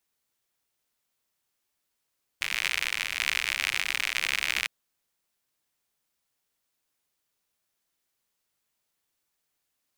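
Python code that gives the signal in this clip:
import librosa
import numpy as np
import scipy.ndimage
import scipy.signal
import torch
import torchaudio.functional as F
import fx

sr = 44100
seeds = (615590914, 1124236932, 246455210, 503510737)

y = fx.rain(sr, seeds[0], length_s=2.26, drops_per_s=79.0, hz=2300.0, bed_db=-23.0)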